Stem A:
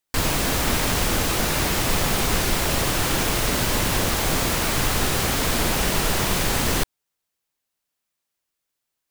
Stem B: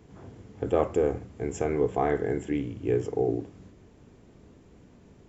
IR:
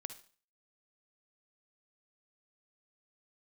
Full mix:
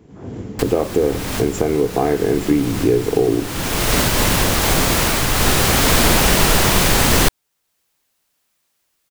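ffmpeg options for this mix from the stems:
-filter_complex "[0:a]adelay=450,volume=-1.5dB[a];[1:a]equalizer=f=260:t=o:w=2.1:g=6,acompressor=threshold=-28dB:ratio=4,volume=2dB,asplit=2[b][c];[c]apad=whole_len=421246[d];[a][d]sidechaincompress=threshold=-49dB:ratio=5:attack=25:release=390[e];[e][b]amix=inputs=2:normalize=0,dynaudnorm=f=190:g=3:m=14dB"

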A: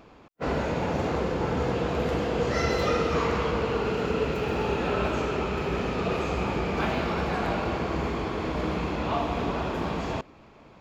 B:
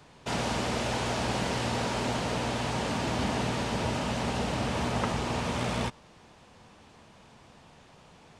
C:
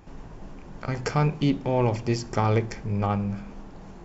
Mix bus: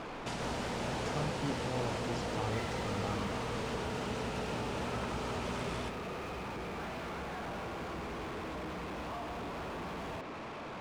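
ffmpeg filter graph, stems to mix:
-filter_complex "[0:a]bass=f=250:g=6,treble=f=4k:g=-3,acompressor=threshold=-30dB:ratio=6,asplit=2[a][b];[b]highpass=f=720:p=1,volume=39dB,asoftclip=type=tanh:threshold=-27.5dB[c];[a][c]amix=inputs=2:normalize=0,lowpass=f=2.1k:p=1,volume=-6dB,volume=-8dB[d];[1:a]acompressor=threshold=-33dB:ratio=6,volume=-3dB[e];[2:a]volume=-15.5dB[f];[d][e][f]amix=inputs=3:normalize=0"

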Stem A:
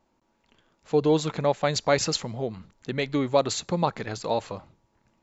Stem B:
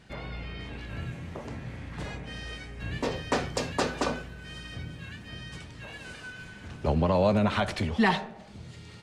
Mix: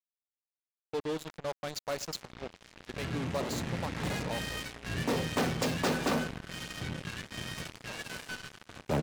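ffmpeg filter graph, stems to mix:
-filter_complex "[0:a]adynamicequalizer=threshold=0.02:dfrequency=780:dqfactor=1:tfrequency=780:tqfactor=1:attack=5:release=100:ratio=0.375:range=2:mode=cutabove:tftype=bell,volume=-9.5dB,asplit=2[a][b];[b]volume=-22.5dB[c];[1:a]adynamicequalizer=threshold=0.00794:dfrequency=190:dqfactor=1.2:tfrequency=190:tqfactor=1.2:attack=5:release=100:ratio=0.375:range=4:mode=boostabove:tftype=bell,dynaudnorm=f=430:g=5:m=12dB,adelay=2050,volume=-6dB[d];[c]aecho=0:1:100:1[e];[a][d][e]amix=inputs=3:normalize=0,aeval=exprs='(tanh(15.8*val(0)+0.45)-tanh(0.45))/15.8':c=same,highpass=f=120:p=1,acrusher=bits=5:mix=0:aa=0.5"

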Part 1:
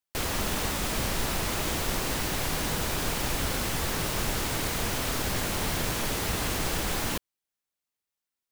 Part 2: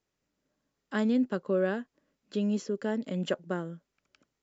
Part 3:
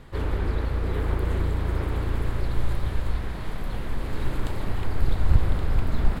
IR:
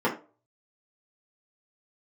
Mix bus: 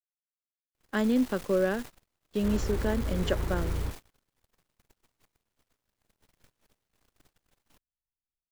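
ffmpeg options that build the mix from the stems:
-filter_complex "[0:a]aeval=exprs='max(val(0),0)':c=same,alimiter=limit=-24dB:level=0:latency=1:release=75,adelay=600,volume=-8dB[a];[1:a]highpass=f=130:p=1,volume=2dB,asplit=2[b][c];[2:a]aeval=exprs='(tanh(5.62*val(0)+0.15)-tanh(0.15))/5.62':c=same,adelay=2300,volume=-5.5dB[d];[c]apad=whole_len=374862[e];[d][e]sidechaingate=range=-33dB:threshold=-59dB:ratio=16:detection=peak[f];[a][b][f]amix=inputs=3:normalize=0,agate=range=-38dB:threshold=-38dB:ratio=16:detection=peak"

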